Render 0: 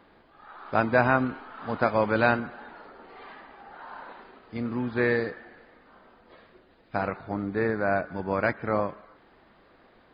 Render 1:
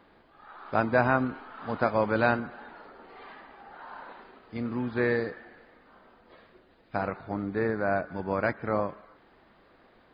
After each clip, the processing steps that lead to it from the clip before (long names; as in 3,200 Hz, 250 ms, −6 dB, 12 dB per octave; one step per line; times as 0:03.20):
dynamic equaliser 2,700 Hz, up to −3 dB, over −38 dBFS, Q 1
level −1.5 dB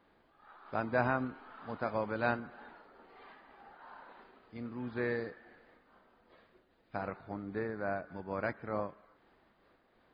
amplitude modulation by smooth noise, depth 55%
level −5.5 dB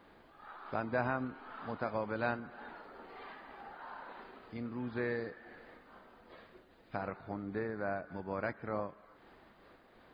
downward compressor 1.5 to 1, threshold −56 dBFS, peak gain reduction 11 dB
level +7.5 dB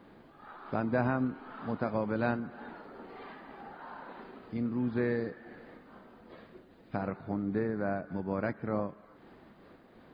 parametric band 190 Hz +9.5 dB 2.5 octaves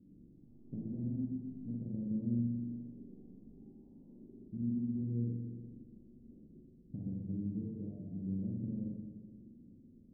inverse Chebyshev low-pass filter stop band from 1,600 Hz, stop band 80 dB
downward compressor, threshold −37 dBFS, peak gain reduction 8.5 dB
spring reverb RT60 1.6 s, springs 42/59 ms, chirp 50 ms, DRR −2.5 dB
level −2 dB